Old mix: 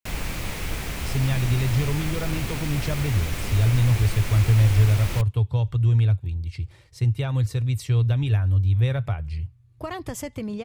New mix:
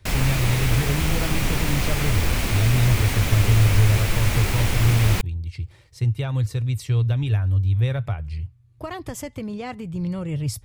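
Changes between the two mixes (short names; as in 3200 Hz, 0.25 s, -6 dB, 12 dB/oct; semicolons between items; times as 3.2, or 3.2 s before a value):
speech: entry -1.00 s; background +6.5 dB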